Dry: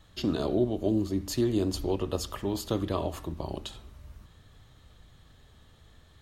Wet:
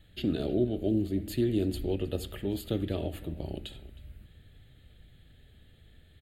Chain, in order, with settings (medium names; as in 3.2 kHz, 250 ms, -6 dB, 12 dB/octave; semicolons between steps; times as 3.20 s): static phaser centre 2.5 kHz, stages 4; echo from a far wall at 54 m, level -18 dB